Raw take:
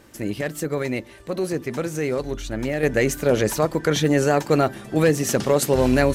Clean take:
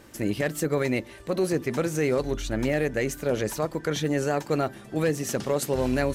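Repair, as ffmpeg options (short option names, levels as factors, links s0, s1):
-af "asetnsamples=n=441:p=0,asendcmd='2.83 volume volume -7dB',volume=1"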